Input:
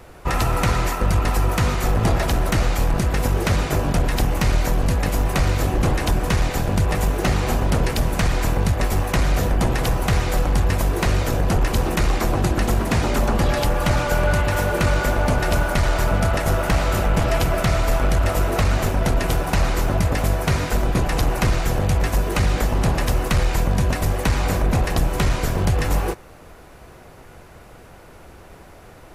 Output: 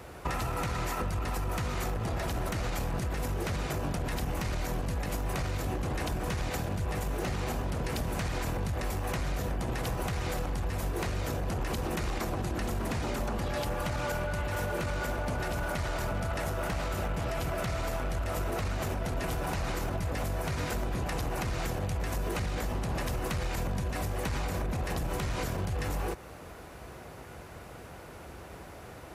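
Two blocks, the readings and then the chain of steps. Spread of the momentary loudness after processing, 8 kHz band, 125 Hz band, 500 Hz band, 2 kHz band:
3 LU, −11.5 dB, −12.5 dB, −11.0 dB, −11.5 dB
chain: high-pass filter 46 Hz 24 dB per octave
brickwall limiter −17.5 dBFS, peak gain reduction 11 dB
downward compressor, threshold −27 dBFS, peak gain reduction 6.5 dB
level −1.5 dB

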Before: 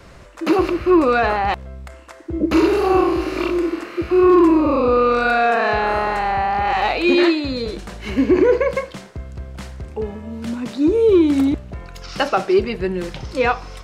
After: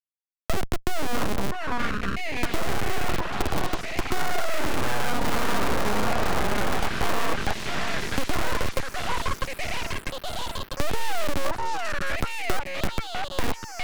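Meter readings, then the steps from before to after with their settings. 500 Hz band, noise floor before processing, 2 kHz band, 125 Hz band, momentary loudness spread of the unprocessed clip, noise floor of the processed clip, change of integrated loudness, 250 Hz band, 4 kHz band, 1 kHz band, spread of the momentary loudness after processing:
−14.0 dB, −41 dBFS, −5.0 dB, −2.0 dB, 17 LU, −43 dBFS, −11.0 dB, −15.5 dB, −1.5 dB, −8.5 dB, 5 LU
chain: harmonic-percussive split with one part muted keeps harmonic
treble cut that deepens with the level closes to 2,600 Hz, closed at −13 dBFS
bit reduction 5 bits
comparator with hysteresis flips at −16.5 dBFS
low-shelf EQ 130 Hz −5 dB
echo through a band-pass that steps 648 ms, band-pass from 720 Hz, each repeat 0.7 octaves, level −1 dB
full-wave rectification
multiband upward and downward compressor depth 70%

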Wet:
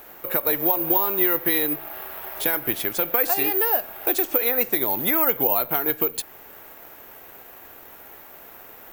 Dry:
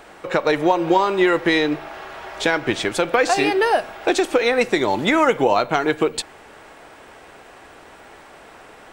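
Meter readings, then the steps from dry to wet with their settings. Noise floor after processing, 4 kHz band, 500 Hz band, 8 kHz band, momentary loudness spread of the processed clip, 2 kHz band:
−45 dBFS, −8.0 dB, −8.5 dB, −1.0 dB, 7 LU, −8.5 dB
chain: in parallel at −2 dB: downward compressor, threshold −28 dBFS, peak gain reduction 15.5 dB
on the sum: bad sample-rate conversion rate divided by 3×, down none, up zero stuff
level −10 dB

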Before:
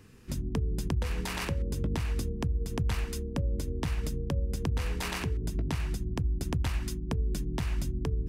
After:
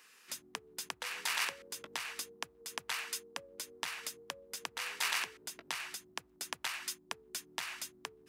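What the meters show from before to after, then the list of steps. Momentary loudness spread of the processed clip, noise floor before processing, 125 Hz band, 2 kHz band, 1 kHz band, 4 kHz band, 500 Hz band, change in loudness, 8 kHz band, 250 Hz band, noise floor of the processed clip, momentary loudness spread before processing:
11 LU, −38 dBFS, −37.5 dB, +3.0 dB, −1.5 dB, +3.5 dB, −13.0 dB, −7.0 dB, +3.5 dB, −24.0 dB, −65 dBFS, 2 LU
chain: high-pass filter 1,200 Hz 12 dB per octave
level +3.5 dB

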